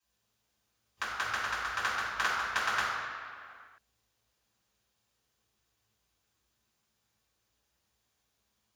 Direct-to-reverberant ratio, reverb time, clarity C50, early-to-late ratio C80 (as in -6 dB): -11.0 dB, not exponential, -1.0 dB, 1.0 dB